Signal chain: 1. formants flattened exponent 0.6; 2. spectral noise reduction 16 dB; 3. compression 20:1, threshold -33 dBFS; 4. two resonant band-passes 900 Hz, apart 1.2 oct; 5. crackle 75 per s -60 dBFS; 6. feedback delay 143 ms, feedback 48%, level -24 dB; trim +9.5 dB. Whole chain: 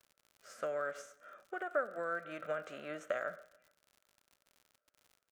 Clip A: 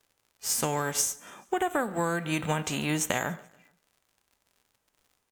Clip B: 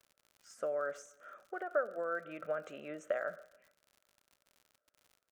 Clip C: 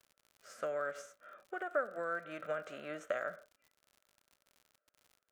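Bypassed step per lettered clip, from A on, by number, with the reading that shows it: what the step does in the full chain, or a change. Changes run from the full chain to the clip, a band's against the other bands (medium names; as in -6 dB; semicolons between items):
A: 4, 500 Hz band -15.0 dB; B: 1, 500 Hz band +3.0 dB; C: 6, echo-to-direct -23.0 dB to none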